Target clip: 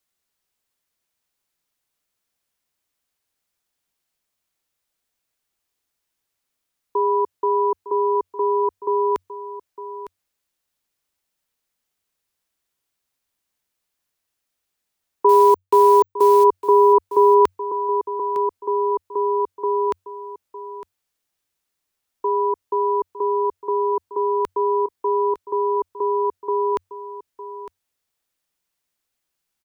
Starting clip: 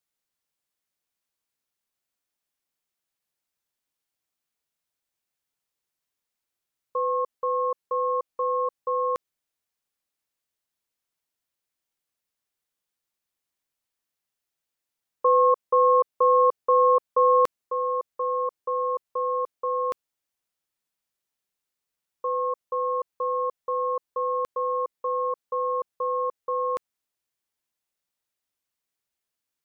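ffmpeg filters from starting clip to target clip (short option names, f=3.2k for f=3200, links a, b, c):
-filter_complex "[0:a]asettb=1/sr,asplit=3[a][b][c];[a]atrim=end=15.294[d];[b]atrim=start=15.29:end=16.44,asetpts=PTS-STARTPTS,afade=t=in:d=0.004:c=qsin,afade=t=out:st=1.146:d=0.004:c=qsin,acrusher=bits=7:dc=4:mix=0:aa=0.000001[e];[c]atrim=start=16.436[f];[d][e]acrossfade=d=0.004:c1=hsin:c2=qsin[g];[g][f]acrossfade=d=0.004:c1=qsin:c2=hsin,aecho=1:1:907:0.2,afreqshift=-95,volume=6dB"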